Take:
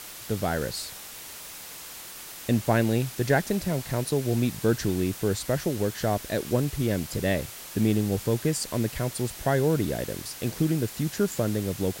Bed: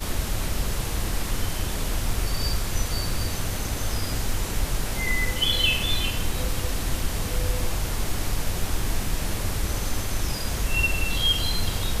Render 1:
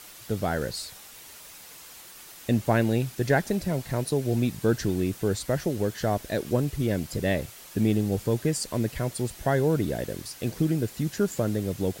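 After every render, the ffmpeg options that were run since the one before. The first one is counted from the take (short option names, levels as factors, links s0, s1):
-af "afftdn=nr=6:nf=-42"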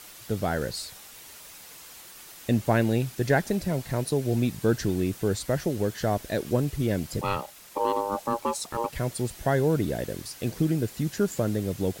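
-filter_complex "[0:a]asettb=1/sr,asplit=3[s0][s1][s2];[s0]atrim=end=7.214[s3];[s1]atrim=start=7.21:end=8.93,asetpts=PTS-STARTPTS,afade=t=in:d=0.004:c=qsin,afade=t=out:st=1.716:d=0.004:c=qsin,aeval=exprs='val(0)*sin(2*PI*700*n/s)':c=same[s4];[s2]atrim=start=8.926[s5];[s3][s4]acrossfade=d=0.004:c1=hsin:c2=qsin[s6];[s6][s5]acrossfade=d=0.004:c1=qsin:c2=hsin"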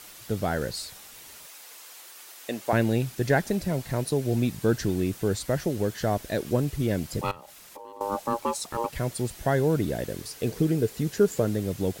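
-filter_complex "[0:a]asettb=1/sr,asplit=3[s0][s1][s2];[s0]atrim=end=1.464[s3];[s1]atrim=start=1.46:end=2.73,asetpts=PTS-STARTPTS,afade=t=in:d=0.004:c=qsin,afade=t=out:st=1.266:d=0.004:c=qsin,highpass=420[s4];[s2]atrim=start=2.726[s5];[s3][s4]acrossfade=d=0.004:c1=hsin:c2=qsin[s6];[s6][s5]acrossfade=d=0.004:c1=qsin:c2=hsin,asettb=1/sr,asplit=3[s7][s8][s9];[s7]atrim=end=7.314[s10];[s8]atrim=start=7.31:end=8.01,asetpts=PTS-STARTPTS,afade=t=in:d=0.004:c=qsin,afade=t=out:st=0.696:d=0.004:c=qsin,acompressor=threshold=0.00891:ratio=6:attack=3.2:release=140:knee=1:detection=peak[s11];[s9]atrim=start=8.006[s12];[s10][s11]acrossfade=d=0.004:c1=hsin:c2=qsin[s13];[s13][s12]acrossfade=d=0.004:c1=qsin:c2=hsin,asettb=1/sr,asplit=3[s14][s15][s16];[s14]atrim=end=10.204[s17];[s15]atrim=start=10.2:end=11.45,asetpts=PTS-STARTPTS,afade=t=in:d=0.004:c=qsin,afade=t=out:st=1.246:d=0.004:c=qsin,equalizer=f=440:t=o:w=0.27:g=10[s18];[s16]atrim=start=11.446[s19];[s17][s18]acrossfade=d=0.004:c1=hsin:c2=qsin[s20];[s20][s19]acrossfade=d=0.004:c1=qsin:c2=hsin"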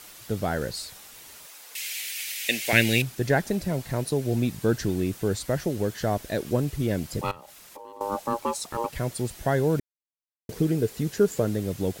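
-filter_complex "[0:a]asettb=1/sr,asplit=3[s0][s1][s2];[s0]atrim=end=1.754[s3];[s1]atrim=start=1.75:end=3.02,asetpts=PTS-STARTPTS,afade=t=in:d=0.004:c=qsin,afade=t=out:st=1.266:d=0.004:c=qsin,highshelf=f=1600:t=q:w=3:g=12[s4];[s2]atrim=start=3.016[s5];[s3][s4]acrossfade=d=0.004:c1=hsin:c2=qsin[s6];[s6][s5]acrossfade=d=0.004:c1=qsin:c2=hsin,asplit=3[s7][s8][s9];[s7]atrim=end=9.8,asetpts=PTS-STARTPTS,afade=t=out:st=9.796:d=0.004:c=hsin[s10];[s8]atrim=start=9.8:end=10.49,asetpts=PTS-STARTPTS,volume=0[s11];[s9]atrim=start=10.49,asetpts=PTS-STARTPTS,afade=t=in:d=0.004:c=hsin[s12];[s10][s11][s12]concat=n=3:v=0:a=1"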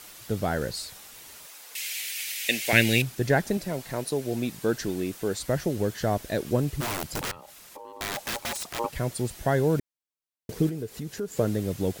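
-filter_complex "[0:a]asettb=1/sr,asplit=3[s0][s1][s2];[s0]atrim=end=3.574[s3];[s1]atrim=start=3.57:end=5.4,asetpts=PTS-STARTPTS,afade=t=in:d=0.004:c=qsin,afade=t=out:st=1.826:d=0.004:c=qsin,equalizer=f=67:t=o:w=2.4:g=-13[s4];[s2]atrim=start=5.396[s5];[s3][s4]acrossfade=d=0.004:c1=hsin:c2=qsin[s6];[s6][s5]acrossfade=d=0.004:c1=qsin:c2=hsin,asplit=3[s7][s8][s9];[s7]afade=t=out:st=6.8:d=0.02[s10];[s8]aeval=exprs='(mod(16.8*val(0)+1,2)-1)/16.8':c=same,afade=t=in:st=6.8:d=0.02,afade=t=out:st=8.78:d=0.02[s11];[s9]afade=t=in:st=8.78:d=0.02[s12];[s10][s11][s12]amix=inputs=3:normalize=0,asettb=1/sr,asplit=3[s13][s14][s15];[s13]atrim=end=10.694[s16];[s14]atrim=start=10.69:end=11.39,asetpts=PTS-STARTPTS,afade=t=in:d=0.004:c=qsin,afade=t=out:st=0.696:d=0.004:c=qsin,acompressor=threshold=0.0141:ratio=2:attack=3.2:release=140:knee=1:detection=peak[s17];[s15]atrim=start=11.386[s18];[s16][s17]acrossfade=d=0.004:c1=hsin:c2=qsin[s19];[s19][s18]acrossfade=d=0.004:c1=qsin:c2=hsin"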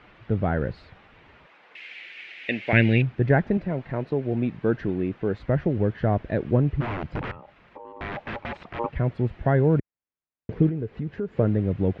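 -af "lowpass=f=2500:w=0.5412,lowpass=f=2500:w=1.3066,equalizer=f=78:w=0.31:g=7"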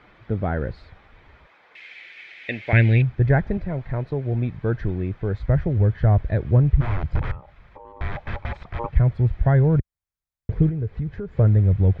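-af "bandreject=f=2800:w=8.1,asubboost=boost=9:cutoff=84"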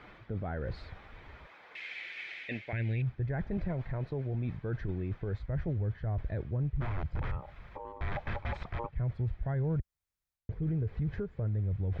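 -af "areverse,acompressor=threshold=0.0447:ratio=12,areverse,alimiter=level_in=1.33:limit=0.0631:level=0:latency=1:release=11,volume=0.75"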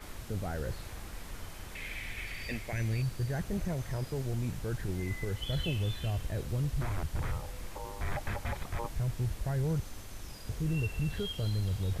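-filter_complex "[1:a]volume=0.126[s0];[0:a][s0]amix=inputs=2:normalize=0"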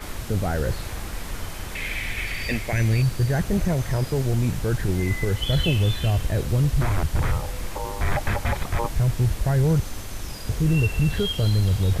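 -af "volume=3.76"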